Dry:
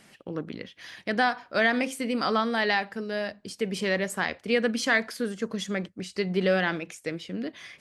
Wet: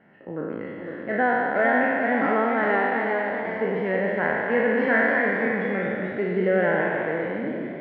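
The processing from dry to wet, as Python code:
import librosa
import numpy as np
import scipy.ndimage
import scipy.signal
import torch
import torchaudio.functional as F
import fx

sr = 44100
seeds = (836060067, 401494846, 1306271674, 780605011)

y = fx.spec_trails(x, sr, decay_s=2.53)
y = scipy.signal.sosfilt(scipy.signal.butter(4, 1800.0, 'lowpass', fs=sr, output='sos'), y)
y = fx.notch_comb(y, sr, f0_hz=1200.0)
y = fx.echo_pitch(y, sr, ms=525, semitones=1, count=3, db_per_echo=-6.0)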